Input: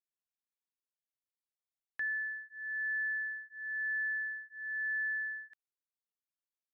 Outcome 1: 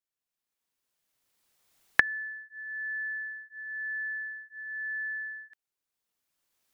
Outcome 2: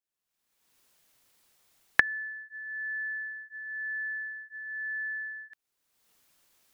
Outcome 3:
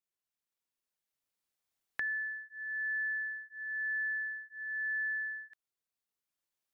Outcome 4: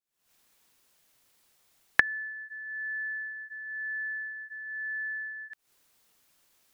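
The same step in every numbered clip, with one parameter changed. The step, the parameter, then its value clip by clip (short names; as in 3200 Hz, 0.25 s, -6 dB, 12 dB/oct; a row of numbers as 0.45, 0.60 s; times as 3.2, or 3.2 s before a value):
recorder AGC, rising by: 15, 36, 5, 89 dB/s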